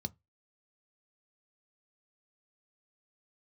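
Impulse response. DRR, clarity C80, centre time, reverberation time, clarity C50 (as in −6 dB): 11.0 dB, 38.0 dB, 2 ms, 0.20 s, 30.0 dB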